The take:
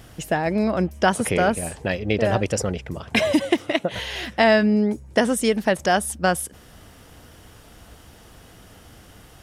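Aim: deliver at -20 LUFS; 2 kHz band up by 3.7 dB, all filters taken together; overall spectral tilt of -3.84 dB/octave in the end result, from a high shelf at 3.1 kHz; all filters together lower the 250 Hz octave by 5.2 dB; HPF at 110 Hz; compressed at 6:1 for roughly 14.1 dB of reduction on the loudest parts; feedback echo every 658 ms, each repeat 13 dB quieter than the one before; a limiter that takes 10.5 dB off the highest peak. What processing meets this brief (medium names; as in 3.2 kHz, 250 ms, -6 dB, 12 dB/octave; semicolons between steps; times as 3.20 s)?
high-pass 110 Hz; peaking EQ 250 Hz -6.5 dB; peaking EQ 2 kHz +6 dB; treble shelf 3.1 kHz -4 dB; compression 6:1, threshold -27 dBFS; peak limiter -21.5 dBFS; feedback delay 658 ms, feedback 22%, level -13 dB; trim +13.5 dB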